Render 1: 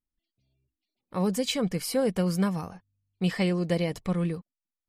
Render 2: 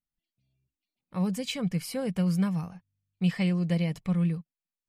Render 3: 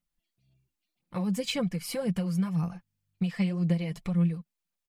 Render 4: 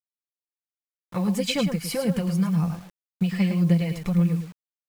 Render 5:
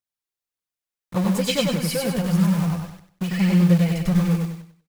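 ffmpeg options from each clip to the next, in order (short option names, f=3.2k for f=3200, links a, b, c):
-af "equalizer=f=160:t=o:w=0.67:g=10,equalizer=f=400:t=o:w=0.67:g=-4,equalizer=f=2.5k:t=o:w=0.67:g=5,volume=-6dB"
-af "acompressor=threshold=-32dB:ratio=6,aphaser=in_gain=1:out_gain=1:delay=4.9:decay=0.44:speed=1.9:type=sinusoidal,aecho=1:1:5.8:0.37,volume=3dB"
-af "aecho=1:1:108:0.398,acrusher=bits=8:mix=0:aa=0.000001,volume=5dB"
-filter_complex "[0:a]aphaser=in_gain=1:out_gain=1:delay=2.9:decay=0.44:speed=1.7:type=triangular,asplit=2[a][b];[b]aeval=exprs='(mod(14.1*val(0)+1,2)-1)/14.1':c=same,volume=-11dB[c];[a][c]amix=inputs=2:normalize=0,aecho=1:1:96|192|288|384:0.708|0.212|0.0637|0.0191"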